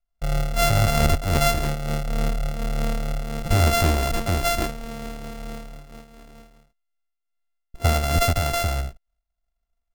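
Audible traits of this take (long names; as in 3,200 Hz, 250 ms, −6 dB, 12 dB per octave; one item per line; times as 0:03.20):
a buzz of ramps at a fixed pitch in blocks of 64 samples
amplitude modulation by smooth noise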